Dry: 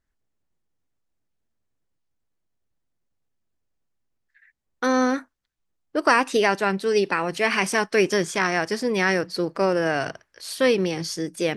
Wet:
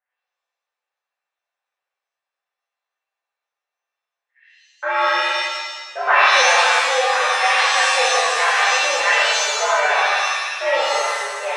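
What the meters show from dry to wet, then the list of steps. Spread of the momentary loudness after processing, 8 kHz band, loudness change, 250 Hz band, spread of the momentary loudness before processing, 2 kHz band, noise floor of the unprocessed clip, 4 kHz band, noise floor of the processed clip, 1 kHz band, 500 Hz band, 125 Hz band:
10 LU, +10.5 dB, +6.5 dB, -22.0 dB, 8 LU, +9.0 dB, -76 dBFS, +12.0 dB, under -85 dBFS, +9.0 dB, 0.0 dB, under -40 dB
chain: mistuned SSB +90 Hz 520–2600 Hz; feedback echo behind a low-pass 104 ms, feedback 61%, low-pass 1.1 kHz, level -7.5 dB; pitch-shifted reverb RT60 1.1 s, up +7 st, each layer -2 dB, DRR -9 dB; trim -4.5 dB

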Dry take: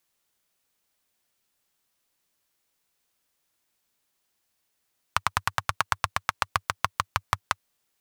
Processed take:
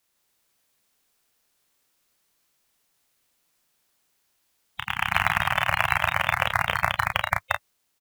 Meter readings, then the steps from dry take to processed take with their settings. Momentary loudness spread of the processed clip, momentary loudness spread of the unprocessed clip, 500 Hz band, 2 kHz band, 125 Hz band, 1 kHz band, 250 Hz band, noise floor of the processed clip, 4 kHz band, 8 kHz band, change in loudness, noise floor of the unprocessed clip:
8 LU, 4 LU, +8.5 dB, +8.5 dB, +5.0 dB, +3.5 dB, +7.0 dB, -73 dBFS, +4.5 dB, -3.0 dB, +5.0 dB, -76 dBFS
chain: coarse spectral quantiser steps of 30 dB; early reflections 34 ms -4 dB, 51 ms -17 dB; ever faster or slower copies 151 ms, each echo +1 st, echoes 3; trim +1.5 dB

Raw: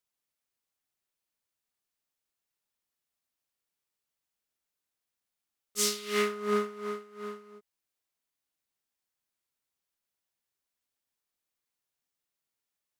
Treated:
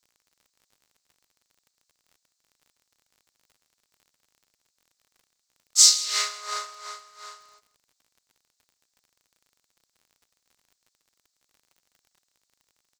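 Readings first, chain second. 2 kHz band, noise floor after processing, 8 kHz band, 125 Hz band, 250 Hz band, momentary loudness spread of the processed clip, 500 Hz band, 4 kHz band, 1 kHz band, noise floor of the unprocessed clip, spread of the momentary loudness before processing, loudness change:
+1.0 dB, -78 dBFS, +15.0 dB, no reading, under -30 dB, 18 LU, -17.0 dB, +14.0 dB, +1.0 dB, under -85 dBFS, 14 LU, +11.0 dB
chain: steep high-pass 510 Hz 72 dB/octave; high-order bell 5.6 kHz +15 dB 1.3 oct; crackle 44 per s -48 dBFS; delay 162 ms -18 dB; trim +1 dB

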